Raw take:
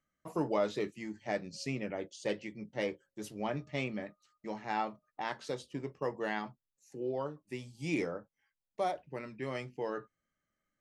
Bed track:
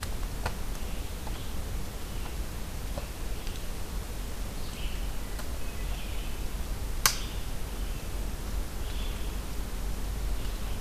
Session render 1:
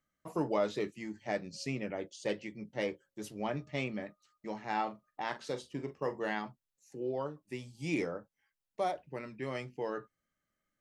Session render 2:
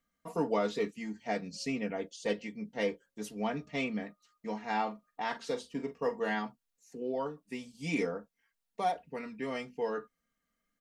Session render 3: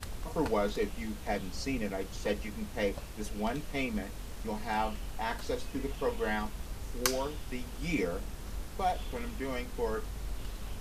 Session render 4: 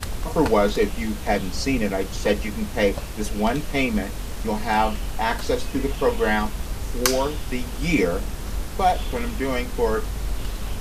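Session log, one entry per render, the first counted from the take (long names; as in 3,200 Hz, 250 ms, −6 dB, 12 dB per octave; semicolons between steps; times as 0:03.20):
0:04.68–0:06.35: double-tracking delay 43 ms −12 dB
comb filter 4.3 ms, depth 83%
mix in bed track −6.5 dB
level +11.5 dB; brickwall limiter −2 dBFS, peak gain reduction 3 dB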